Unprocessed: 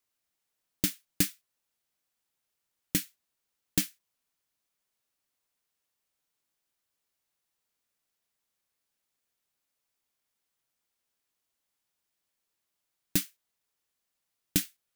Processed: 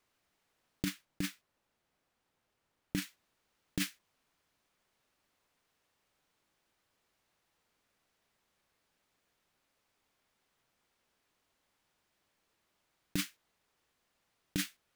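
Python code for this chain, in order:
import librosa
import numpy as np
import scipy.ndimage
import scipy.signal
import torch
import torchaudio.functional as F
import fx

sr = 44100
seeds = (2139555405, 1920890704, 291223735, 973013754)

y = fx.over_compress(x, sr, threshold_db=-32.0, ratio=-1.0)
y = fx.lowpass(y, sr, hz=fx.steps((0.0, 2100.0), (0.85, 1200.0), (3.02, 2200.0)), slope=6)
y = y * 10.0 ** (6.5 / 20.0)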